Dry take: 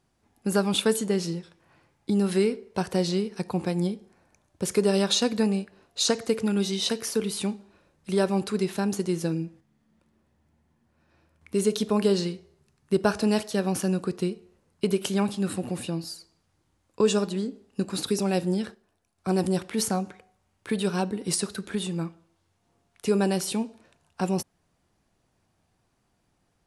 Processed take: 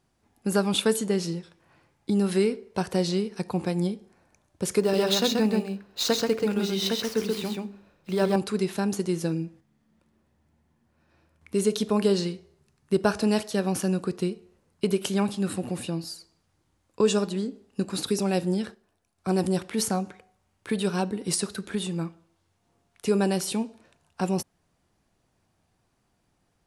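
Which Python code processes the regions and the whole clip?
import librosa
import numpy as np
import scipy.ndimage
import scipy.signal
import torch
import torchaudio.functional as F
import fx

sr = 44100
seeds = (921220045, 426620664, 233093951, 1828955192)

y = fx.chain(x, sr, fx.median_filter(points=5),
    fx.hum_notches(base_hz=50, count=8),
    fx.echo_single(ms=131, db=-3.0), at=(4.8, 8.36))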